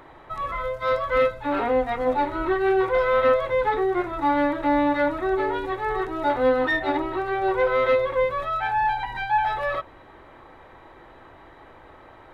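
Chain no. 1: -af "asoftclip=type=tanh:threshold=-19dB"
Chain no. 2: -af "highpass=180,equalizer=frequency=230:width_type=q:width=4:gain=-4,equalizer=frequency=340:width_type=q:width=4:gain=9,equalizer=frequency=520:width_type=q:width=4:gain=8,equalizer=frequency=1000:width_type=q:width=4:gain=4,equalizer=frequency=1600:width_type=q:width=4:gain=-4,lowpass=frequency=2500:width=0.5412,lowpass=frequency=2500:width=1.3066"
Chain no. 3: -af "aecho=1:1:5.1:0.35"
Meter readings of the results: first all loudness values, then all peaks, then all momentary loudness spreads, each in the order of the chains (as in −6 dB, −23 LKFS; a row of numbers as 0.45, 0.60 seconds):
−26.0, −17.5, −23.5 LKFS; −19.0, −3.5, −11.0 dBFS; 5, 11, 5 LU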